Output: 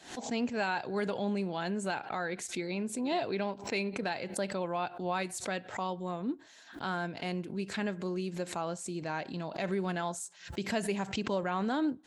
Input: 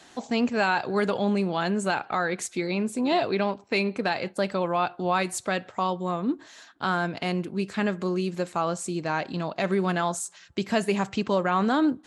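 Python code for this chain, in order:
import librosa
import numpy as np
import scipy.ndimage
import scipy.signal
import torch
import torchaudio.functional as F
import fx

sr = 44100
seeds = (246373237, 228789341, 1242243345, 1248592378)

y = fx.peak_eq(x, sr, hz=1200.0, db=-7.0, octaves=0.21)
y = fx.pre_swell(y, sr, db_per_s=120.0)
y = F.gain(torch.from_numpy(y), -8.0).numpy()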